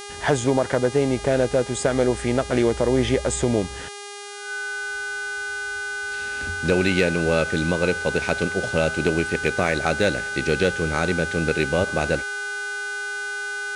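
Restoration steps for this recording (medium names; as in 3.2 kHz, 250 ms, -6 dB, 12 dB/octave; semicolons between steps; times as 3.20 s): clip repair -8 dBFS; de-hum 406.9 Hz, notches 25; band-stop 1.5 kHz, Q 30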